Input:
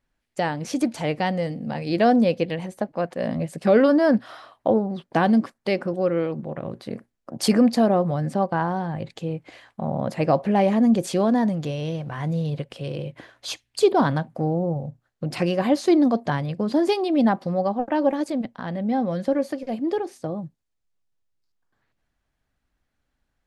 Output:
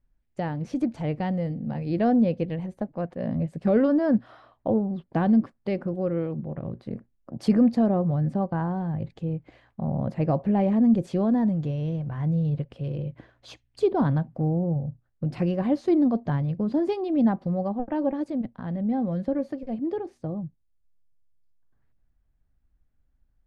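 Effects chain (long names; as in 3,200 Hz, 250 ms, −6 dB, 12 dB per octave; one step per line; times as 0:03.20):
RIAA equalisation playback
level −8.5 dB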